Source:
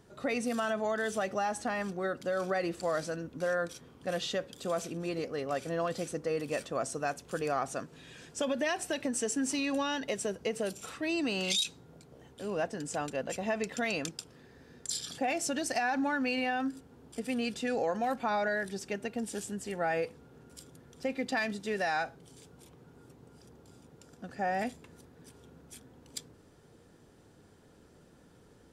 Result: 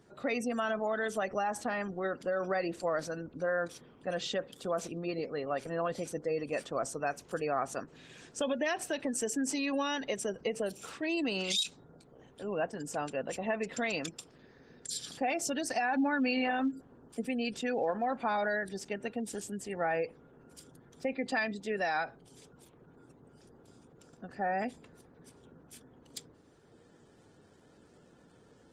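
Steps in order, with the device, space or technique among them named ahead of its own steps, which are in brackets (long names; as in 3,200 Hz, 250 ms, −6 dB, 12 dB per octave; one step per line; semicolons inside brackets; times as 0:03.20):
0:15.87–0:17.29: dynamic equaliser 220 Hz, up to +4 dB, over −41 dBFS, Q 1.2
noise-suppressed video call (high-pass filter 120 Hz 6 dB per octave; gate on every frequency bin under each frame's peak −30 dB strong; Opus 16 kbit/s 48,000 Hz)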